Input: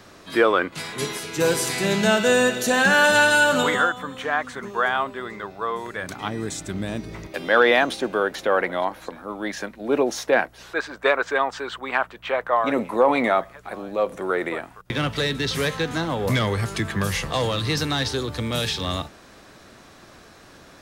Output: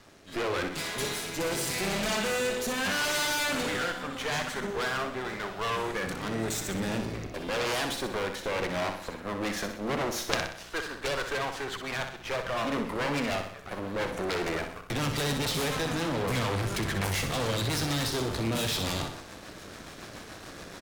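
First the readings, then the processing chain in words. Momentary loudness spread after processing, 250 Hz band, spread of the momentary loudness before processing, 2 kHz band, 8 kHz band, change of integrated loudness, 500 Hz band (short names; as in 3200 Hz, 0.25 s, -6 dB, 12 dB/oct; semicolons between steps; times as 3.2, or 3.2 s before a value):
8 LU, -6.5 dB, 13 LU, -10.0 dB, -3.5 dB, -8.0 dB, -9.5 dB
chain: AGC gain up to 10.5 dB; rotary speaker horn 0.85 Hz, later 7 Hz, at 8.53; half-wave rectifier; added harmonics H 4 -9 dB, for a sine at -1 dBFS; feedback echo 62 ms, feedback 49%, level -7.5 dB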